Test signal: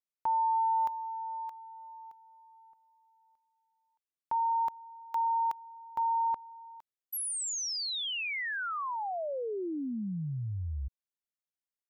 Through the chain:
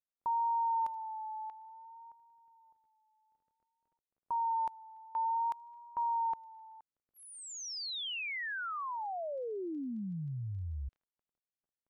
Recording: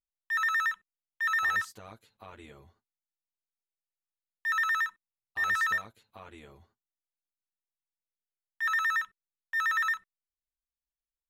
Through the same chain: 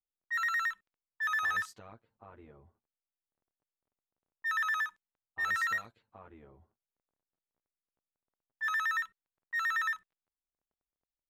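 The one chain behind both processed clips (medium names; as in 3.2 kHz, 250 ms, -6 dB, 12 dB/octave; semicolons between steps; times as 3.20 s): crackle 15 per s -53 dBFS; vibrato 0.56 Hz 55 cents; level-controlled noise filter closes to 830 Hz, open at -28.5 dBFS; trim -3.5 dB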